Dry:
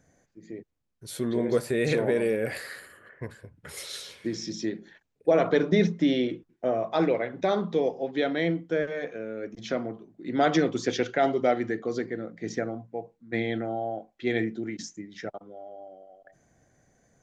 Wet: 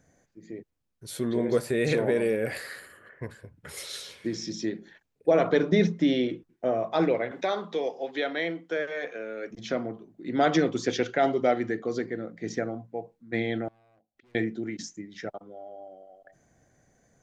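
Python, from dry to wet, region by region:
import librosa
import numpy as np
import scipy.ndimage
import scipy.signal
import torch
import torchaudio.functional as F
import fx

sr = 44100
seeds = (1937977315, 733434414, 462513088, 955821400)

y = fx.chain(x, sr, fx.weighting(curve='A'),
    fx.band_squash(depth_pct=40), at=(7.31, 9.51))
y = fx.chain(y, sr, fx.peak_eq(hz=78.0, db=13.0, octaves=2.1),
    fx.overload_stage(gain_db=32.5),
    fx.gate_flip(shuts_db=-44.0, range_db=-28), at=(13.68, 14.35))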